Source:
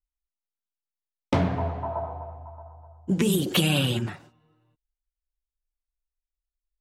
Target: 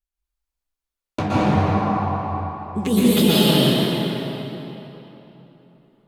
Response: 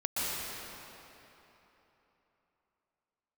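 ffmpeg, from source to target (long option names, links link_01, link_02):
-filter_complex "[0:a]asetrate=49392,aresample=44100,acontrast=75,flanger=delay=4.9:depth=9.5:regen=57:speed=1.1:shape=sinusoidal[link_01];[1:a]atrim=start_sample=2205[link_02];[link_01][link_02]afir=irnorm=-1:irlink=0,volume=-2.5dB"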